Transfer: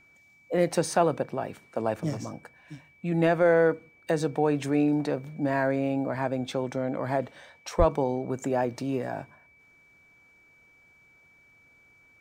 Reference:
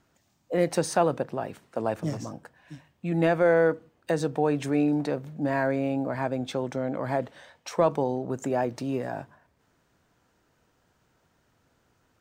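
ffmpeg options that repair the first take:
ffmpeg -i in.wav -filter_complex "[0:a]bandreject=frequency=2300:width=30,asplit=3[link_01][link_02][link_03];[link_01]afade=type=out:start_time=7.78:duration=0.02[link_04];[link_02]highpass=frequency=140:width=0.5412,highpass=frequency=140:width=1.3066,afade=type=in:start_time=7.78:duration=0.02,afade=type=out:start_time=7.9:duration=0.02[link_05];[link_03]afade=type=in:start_time=7.9:duration=0.02[link_06];[link_04][link_05][link_06]amix=inputs=3:normalize=0" out.wav

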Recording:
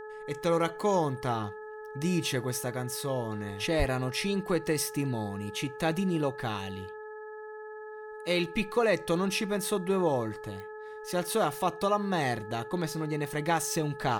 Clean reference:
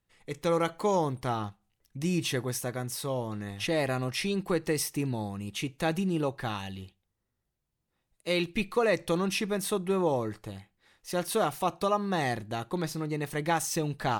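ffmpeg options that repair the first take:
ffmpeg -i in.wav -filter_complex "[0:a]adeclick=threshold=4,bandreject=frequency=429.6:width_type=h:width=4,bandreject=frequency=859.2:width_type=h:width=4,bandreject=frequency=1288.8:width_type=h:width=4,bandreject=frequency=1718.4:width_type=h:width=4,bandreject=frequency=1700:width=30,asplit=3[link_01][link_02][link_03];[link_01]afade=type=out:start_time=3.78:duration=0.02[link_04];[link_02]highpass=frequency=140:width=0.5412,highpass=frequency=140:width=1.3066,afade=type=in:start_time=3.78:duration=0.02,afade=type=out:start_time=3.9:duration=0.02[link_05];[link_03]afade=type=in:start_time=3.9:duration=0.02[link_06];[link_04][link_05][link_06]amix=inputs=3:normalize=0" out.wav

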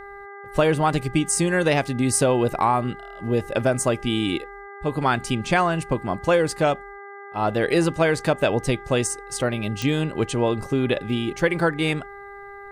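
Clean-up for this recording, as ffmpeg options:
ffmpeg -i in.wav -af "adeclick=threshold=4,bandreject=frequency=401:width_type=h:width=4,bandreject=frequency=802:width_type=h:width=4,bandreject=frequency=1203:width_type=h:width=4,bandreject=frequency=1604:width_type=h:width=4,bandreject=frequency=2005:width_type=h:width=4" out.wav

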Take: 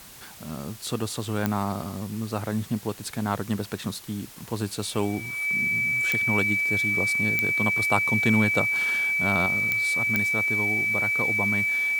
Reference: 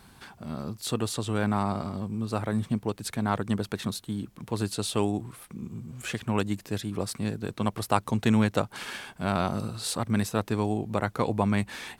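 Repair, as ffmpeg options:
ffmpeg -i in.wav -af "adeclick=threshold=4,bandreject=frequency=2300:width=30,afwtdn=0.005,asetnsamples=nb_out_samples=441:pad=0,asendcmd='9.46 volume volume 5dB',volume=0dB" out.wav

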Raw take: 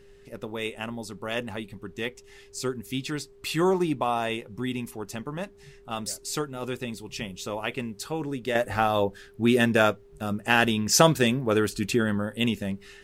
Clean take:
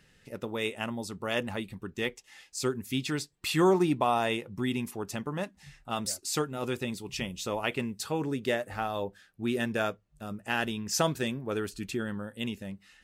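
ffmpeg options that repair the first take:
ffmpeg -i in.wav -af "bandreject=frequency=400:width=30,agate=range=-21dB:threshold=-43dB,asetnsamples=nb_out_samples=441:pad=0,asendcmd='8.55 volume volume -9dB',volume=0dB" out.wav

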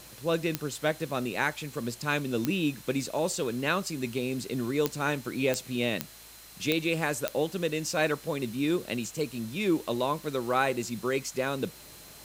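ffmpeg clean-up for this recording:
ffmpeg -i in.wav -af "adeclick=threshold=4,bandreject=frequency=55:width_type=h:width=4,bandreject=frequency=110:width_type=h:width=4,bandreject=frequency=165:width_type=h:width=4,bandreject=frequency=220:width_type=h:width=4,bandreject=frequency=4100:width=30,afwtdn=0.0035" out.wav

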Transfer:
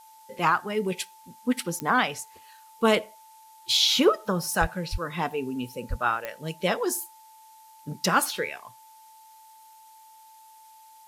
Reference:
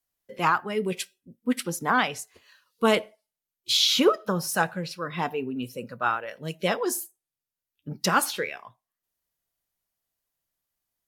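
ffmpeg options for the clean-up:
ffmpeg -i in.wav -filter_complex "[0:a]adeclick=threshold=4,bandreject=frequency=880:width=30,asplit=3[link_01][link_02][link_03];[link_01]afade=type=out:start_time=4.6:duration=0.02[link_04];[link_02]highpass=frequency=140:width=0.5412,highpass=frequency=140:width=1.3066,afade=type=in:start_time=4.6:duration=0.02,afade=type=out:start_time=4.72:duration=0.02[link_05];[link_03]afade=type=in:start_time=4.72:duration=0.02[link_06];[link_04][link_05][link_06]amix=inputs=3:normalize=0,asplit=3[link_07][link_08][link_09];[link_07]afade=type=out:start_time=4.91:duration=0.02[link_10];[link_08]highpass=frequency=140:width=0.5412,highpass=frequency=140:width=1.3066,afade=type=in:start_time=4.91:duration=0.02,afade=type=out:start_time=5.03:duration=0.02[link_11];[link_09]afade=type=in:start_time=5.03:duration=0.02[link_12];[link_10][link_11][link_12]amix=inputs=3:normalize=0,asplit=3[link_13][link_14][link_15];[link_13]afade=type=out:start_time=5.89:duration=0.02[link_16];[link_14]highpass=frequency=140:width=0.5412,highpass=frequency=140:width=1.3066,afade=type=in:start_time=5.89:duration=0.02,afade=type=out:start_time=6.01:duration=0.02[link_17];[link_15]afade=type=in:start_time=6.01:duration=0.02[link_18];[link_16][link_17][link_18]amix=inputs=3:normalize=0,agate=range=-21dB:threshold=-44dB" out.wav

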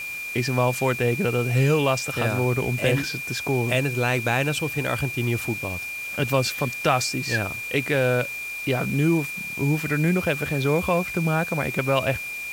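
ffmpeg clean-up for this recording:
ffmpeg -i in.wav -af "adeclick=threshold=4,bandreject=frequency=2400:width=30,afwtdn=0.0079" out.wav

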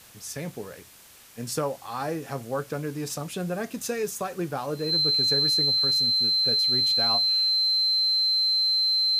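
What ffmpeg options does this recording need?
ffmpeg -i in.wav -af "adeclick=threshold=4,bandreject=frequency=4100:width=30,afwtdn=0.0032" out.wav

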